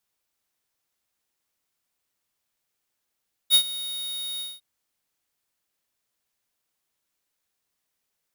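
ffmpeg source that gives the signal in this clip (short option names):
-f lavfi -i "aevalsrc='0.188*(2*lt(mod(3740*t,1),0.5)-1)':d=1.103:s=44100,afade=t=in:d=0.046,afade=t=out:st=0.046:d=0.08:silence=0.133,afade=t=out:st=0.9:d=0.203"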